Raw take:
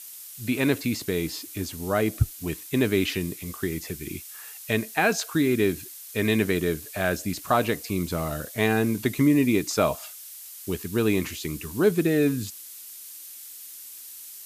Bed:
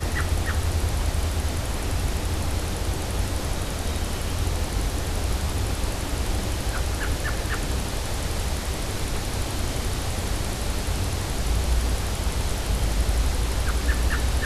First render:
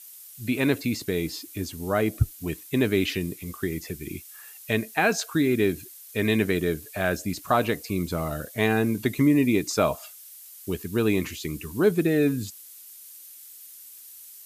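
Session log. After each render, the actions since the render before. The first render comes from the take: noise reduction 6 dB, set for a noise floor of -43 dBFS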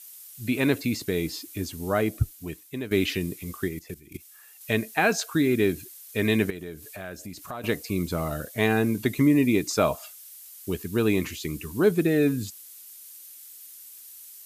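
1.92–2.91 s: fade out, to -13 dB; 3.68–4.61 s: level held to a coarse grid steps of 17 dB; 6.50–7.64 s: compression 2.5:1, threshold -39 dBFS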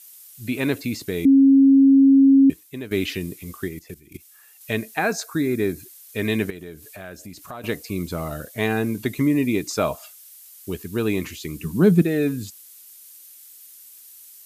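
1.25–2.50 s: bleep 272 Hz -9.5 dBFS; 4.99–5.82 s: peaking EQ 3 kHz -14 dB 0.34 oct; 11.60–12.02 s: peaking EQ 180 Hz +14 dB 0.91 oct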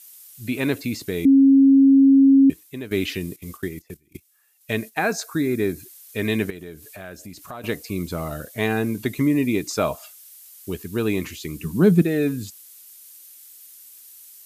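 3.36–5.10 s: gate -43 dBFS, range -12 dB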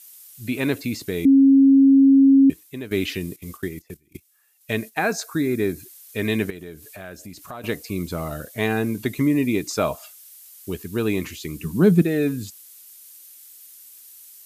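no audible change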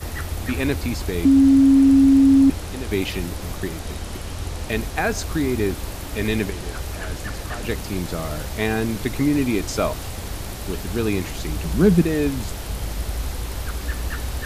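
add bed -4 dB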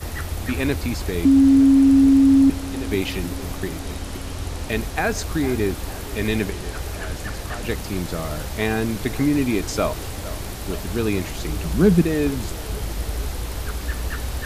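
feedback echo behind a band-pass 456 ms, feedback 66%, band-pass 850 Hz, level -14.5 dB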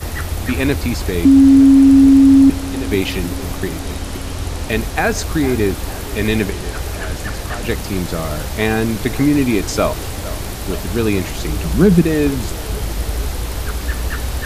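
trim +5.5 dB; peak limiter -1 dBFS, peak gain reduction 2.5 dB

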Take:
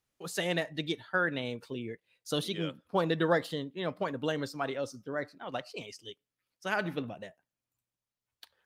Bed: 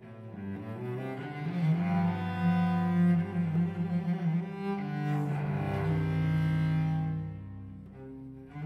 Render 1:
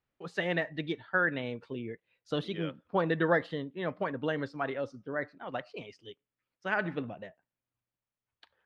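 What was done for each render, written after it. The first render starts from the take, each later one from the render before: low-pass 2.6 kHz 12 dB/octave; dynamic bell 1.8 kHz, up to +5 dB, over -50 dBFS, Q 3.4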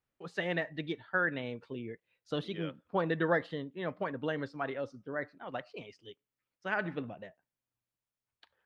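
trim -2.5 dB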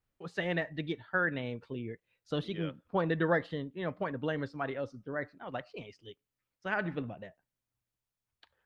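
bass shelf 94 Hz +12 dB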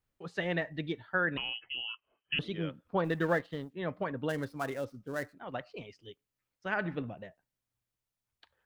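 1.37–2.39 s: frequency inversion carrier 3.1 kHz; 3.04–3.73 s: companding laws mixed up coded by A; 4.29–5.35 s: dead-time distortion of 0.059 ms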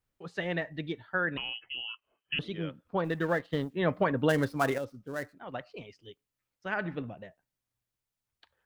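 3.53–4.78 s: gain +8 dB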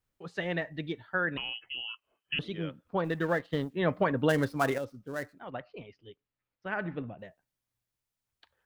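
5.50–7.19 s: distance through air 220 m

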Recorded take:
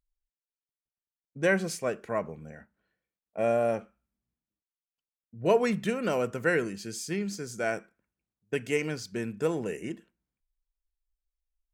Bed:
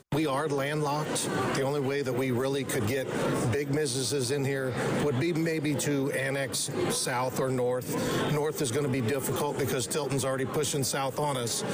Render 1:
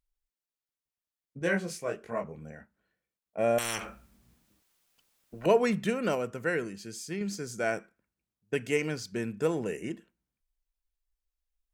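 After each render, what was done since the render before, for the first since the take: 1.39–2.35 s: detune thickener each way 51 cents; 3.58–5.46 s: spectrum-flattening compressor 10:1; 6.15–7.21 s: gain -4 dB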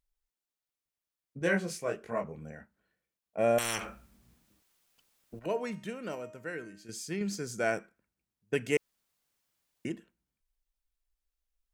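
5.39–6.89 s: feedback comb 310 Hz, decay 0.57 s, mix 70%; 8.77–9.85 s: room tone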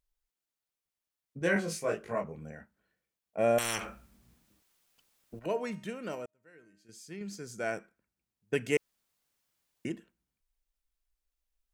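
1.54–2.15 s: doubling 19 ms -2 dB; 6.26–8.55 s: fade in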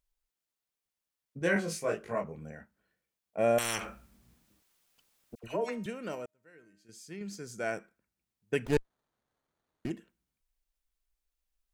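5.35–5.86 s: phase dispersion lows, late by 83 ms, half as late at 1.3 kHz; 8.65–9.91 s: sliding maximum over 17 samples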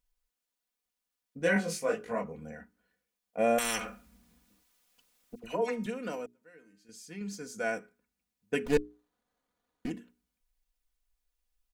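hum notches 60/120/180/240/300/360/420 Hz; comb 4.1 ms, depth 64%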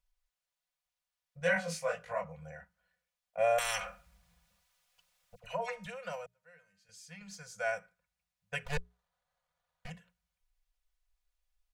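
elliptic band-stop 170–540 Hz, stop band 40 dB; treble shelf 8.1 kHz -9 dB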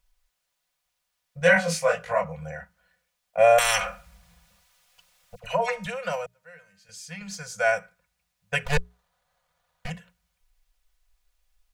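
trim +11.5 dB

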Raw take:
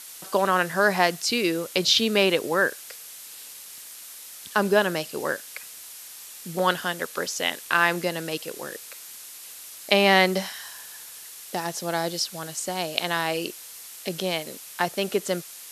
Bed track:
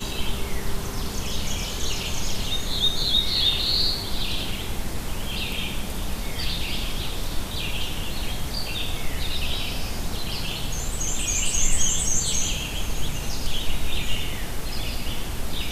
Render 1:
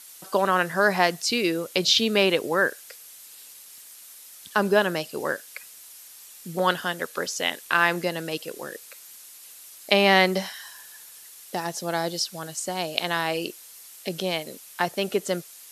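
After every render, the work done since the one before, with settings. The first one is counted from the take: noise reduction 6 dB, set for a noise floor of -43 dBFS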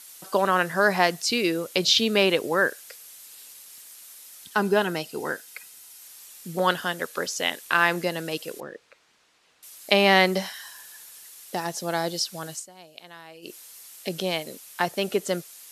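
4.44–6.02 s: comb of notches 570 Hz; 8.60–9.63 s: tape spacing loss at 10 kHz 30 dB; 12.54–13.55 s: dip -19 dB, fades 0.13 s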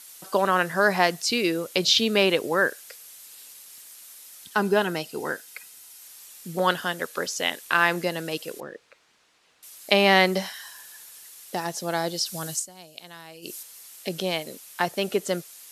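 12.26–13.63 s: tone controls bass +5 dB, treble +8 dB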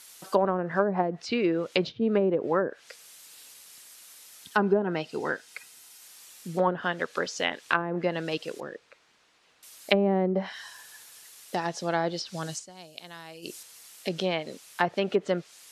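low-pass that closes with the level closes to 440 Hz, closed at -16 dBFS; treble shelf 8.8 kHz -7 dB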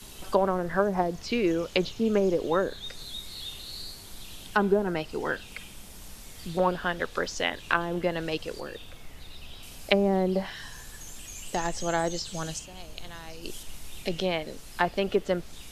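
add bed track -18 dB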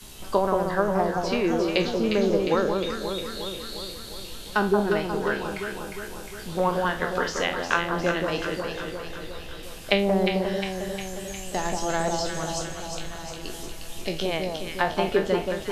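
spectral sustain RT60 0.31 s; on a send: echo whose repeats swap between lows and highs 178 ms, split 1.2 kHz, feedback 77%, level -3 dB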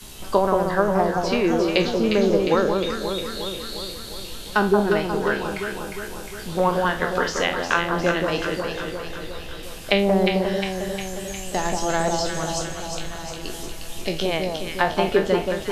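trim +3.5 dB; peak limiter -2 dBFS, peak gain reduction 2 dB

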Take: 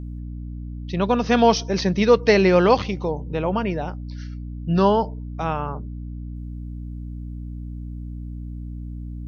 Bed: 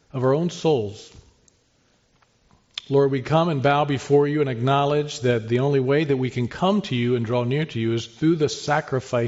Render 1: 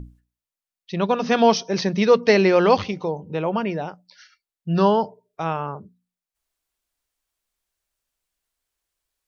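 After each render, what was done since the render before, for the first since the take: hum notches 60/120/180/240/300 Hz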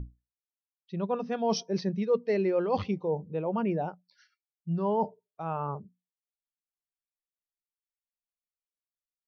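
reverse; compression 8:1, threshold -26 dBFS, peak gain reduction 16 dB; reverse; spectral contrast expander 1.5:1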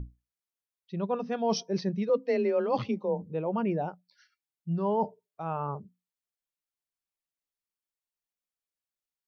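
2.09–3.22 s: frequency shift +25 Hz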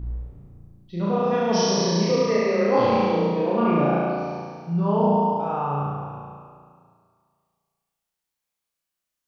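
spectral sustain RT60 1.92 s; flutter echo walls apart 6 m, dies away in 1.5 s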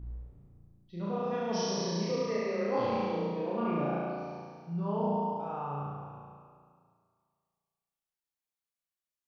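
trim -11 dB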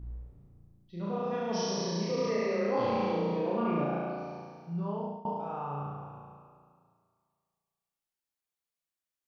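2.18–3.84 s: level flattener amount 50%; 4.81–5.25 s: fade out, to -22 dB

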